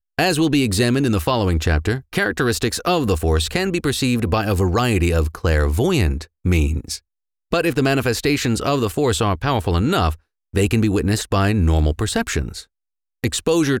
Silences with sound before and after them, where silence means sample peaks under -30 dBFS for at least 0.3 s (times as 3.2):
6.97–7.52
10.14–10.54
12.61–13.24